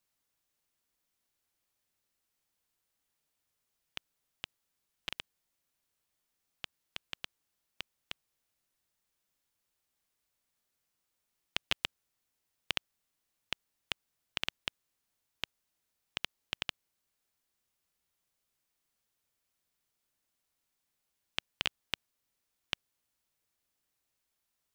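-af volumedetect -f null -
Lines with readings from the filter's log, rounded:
mean_volume: -48.3 dB
max_volume: -9.1 dB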